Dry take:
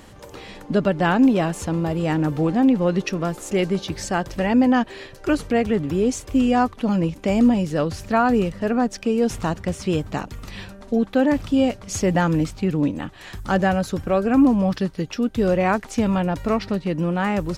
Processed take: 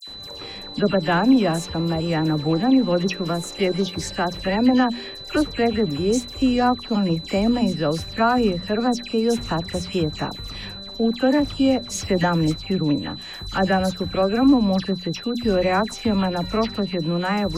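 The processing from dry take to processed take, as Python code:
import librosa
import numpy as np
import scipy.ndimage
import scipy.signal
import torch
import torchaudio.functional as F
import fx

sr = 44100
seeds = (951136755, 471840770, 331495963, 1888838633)

y = x + 10.0 ** (-35.0 / 20.0) * np.sin(2.0 * np.pi * 4000.0 * np.arange(len(x)) / sr)
y = fx.hum_notches(y, sr, base_hz=60, count=4)
y = fx.dispersion(y, sr, late='lows', ms=77.0, hz=2500.0)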